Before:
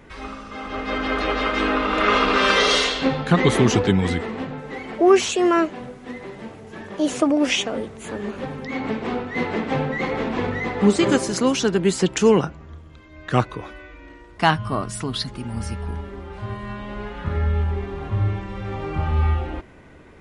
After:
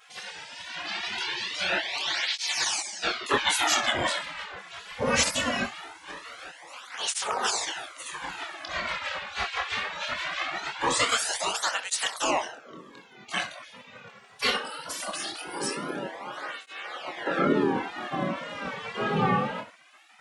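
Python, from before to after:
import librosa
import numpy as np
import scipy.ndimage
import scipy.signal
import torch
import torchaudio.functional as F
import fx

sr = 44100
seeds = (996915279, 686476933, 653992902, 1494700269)

p1 = fx.octave_divider(x, sr, octaves=1, level_db=-3.0)
p2 = fx.peak_eq(p1, sr, hz=2200.0, db=-2.5, octaves=0.72)
p3 = fx.echo_feedback(p2, sr, ms=65, feedback_pct=30, wet_db=-13.5)
p4 = fx.wow_flutter(p3, sr, seeds[0], rate_hz=2.1, depth_cents=83.0)
p5 = fx.chorus_voices(p4, sr, voices=6, hz=1.2, base_ms=26, depth_ms=3.0, mix_pct=35)
p6 = fx.spec_gate(p5, sr, threshold_db=-20, keep='weak')
p7 = fx.rider(p6, sr, range_db=3, speed_s=2.0)
p8 = p6 + (p7 * librosa.db_to_amplitude(1.5))
p9 = fx.flanger_cancel(p8, sr, hz=0.21, depth_ms=3.4)
y = p9 * librosa.db_to_amplitude(4.5)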